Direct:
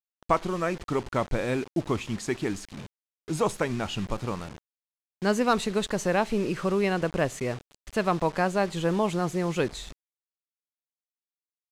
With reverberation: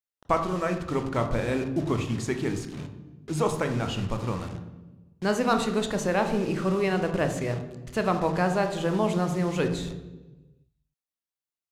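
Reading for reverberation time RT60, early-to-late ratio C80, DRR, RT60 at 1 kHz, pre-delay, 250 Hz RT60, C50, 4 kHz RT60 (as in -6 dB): 1.2 s, 11.5 dB, 6.0 dB, 1.0 s, 23 ms, 1.7 s, 9.0 dB, 0.95 s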